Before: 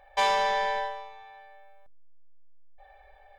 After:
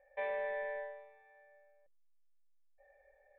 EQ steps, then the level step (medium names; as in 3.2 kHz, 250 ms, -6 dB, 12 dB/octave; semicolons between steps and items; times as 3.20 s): cascade formant filter e; 0.0 dB